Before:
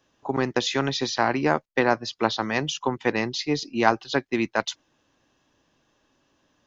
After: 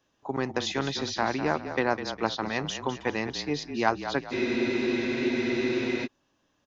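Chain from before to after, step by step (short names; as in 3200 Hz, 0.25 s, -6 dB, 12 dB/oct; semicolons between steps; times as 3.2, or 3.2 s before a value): frequency-shifting echo 0.203 s, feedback 40%, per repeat -33 Hz, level -10 dB; spectral freeze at 4.34, 1.72 s; gain -5 dB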